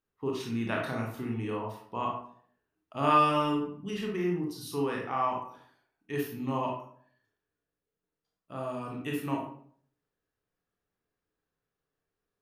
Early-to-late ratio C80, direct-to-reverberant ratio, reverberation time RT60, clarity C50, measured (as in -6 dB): 8.0 dB, -1.0 dB, 0.55 s, 4.0 dB